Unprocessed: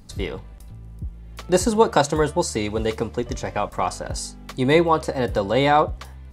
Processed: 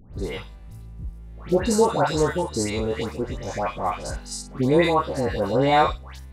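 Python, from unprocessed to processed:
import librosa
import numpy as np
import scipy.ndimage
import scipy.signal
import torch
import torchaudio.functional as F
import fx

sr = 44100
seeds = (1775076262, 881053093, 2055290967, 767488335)

y = fx.spec_steps(x, sr, hold_ms=50)
y = fx.notch(y, sr, hz=3200.0, q=29.0)
y = fx.dispersion(y, sr, late='highs', ms=146.0, hz=1500.0)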